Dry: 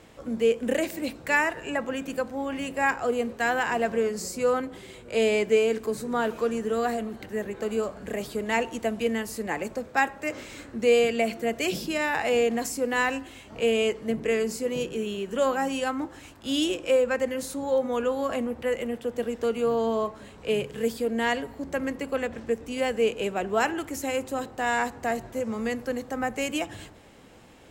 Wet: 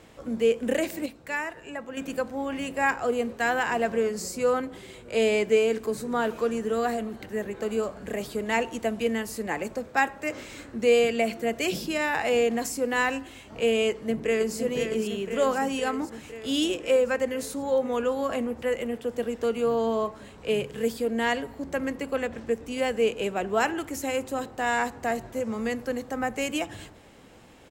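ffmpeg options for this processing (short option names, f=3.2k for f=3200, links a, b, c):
-filter_complex "[0:a]asplit=2[a][b];[b]afade=t=in:st=13.89:d=0.01,afade=t=out:st=14.56:d=0.01,aecho=0:1:510|1020|1530|2040|2550|3060|3570|4080|4590|5100|5610:0.473151|0.331206|0.231844|0.162291|0.113604|0.0795225|0.0556658|0.038966|0.0272762|0.0190934|0.0133654[c];[a][c]amix=inputs=2:normalize=0,asplit=3[d][e][f];[d]atrim=end=1.062[g];[e]atrim=start=1.058:end=1.972,asetpts=PTS-STARTPTS,volume=-7.5dB[h];[f]atrim=start=1.968[i];[g][h]acrossfade=d=0.004:c1=hsin:c2=hsin[j];[j][i]acrossfade=d=0.004:c1=hsin:c2=hsin"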